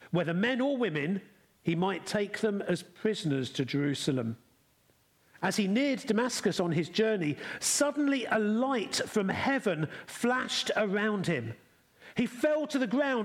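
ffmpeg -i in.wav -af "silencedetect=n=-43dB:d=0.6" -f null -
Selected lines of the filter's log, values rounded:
silence_start: 4.35
silence_end: 5.36 | silence_duration: 1.02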